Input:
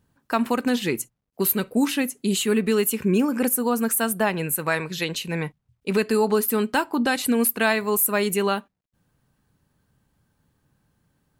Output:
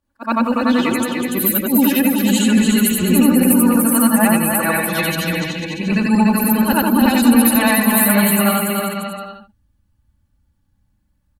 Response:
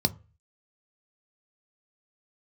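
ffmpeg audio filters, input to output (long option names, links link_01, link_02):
-af "afftfilt=real='re':imag='-im':win_size=8192:overlap=0.75,afftdn=noise_reduction=13:noise_floor=-39,aecho=1:1:3.5:0.79,asubboost=boost=6:cutoff=150,acontrast=71,aecho=1:1:290|493|635.1|734.6|804.2:0.631|0.398|0.251|0.158|0.1,volume=2dB"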